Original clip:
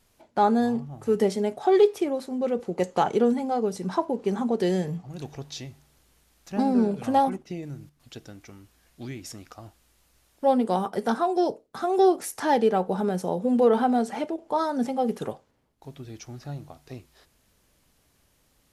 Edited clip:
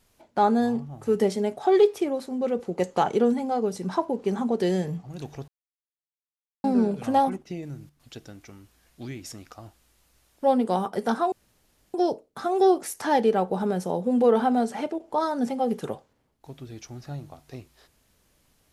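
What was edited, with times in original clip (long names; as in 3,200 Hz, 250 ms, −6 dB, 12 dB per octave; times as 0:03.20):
0:05.48–0:06.64: silence
0:11.32: splice in room tone 0.62 s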